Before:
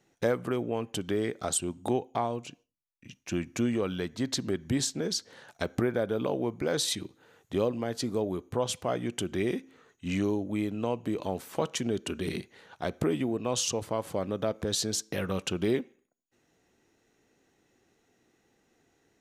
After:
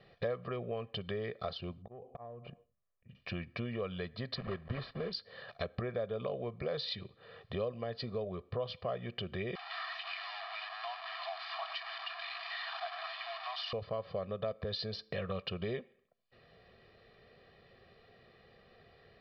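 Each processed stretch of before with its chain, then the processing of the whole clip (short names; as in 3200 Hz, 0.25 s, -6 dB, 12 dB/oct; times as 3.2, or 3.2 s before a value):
1.82–3.15 LPF 1100 Hz + auto swell 0.32 s + compressor 10:1, threshold -45 dBFS
4.35–5.13 block floating point 3-bit + LPF 2200 Hz
9.55–13.73 delta modulation 64 kbps, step -28.5 dBFS + Chebyshev high-pass 660 Hz, order 10 + air absorption 74 m
whole clip: steep low-pass 4900 Hz 96 dB/oct; comb 1.7 ms, depth 91%; compressor 2:1, threshold -56 dBFS; gain +7 dB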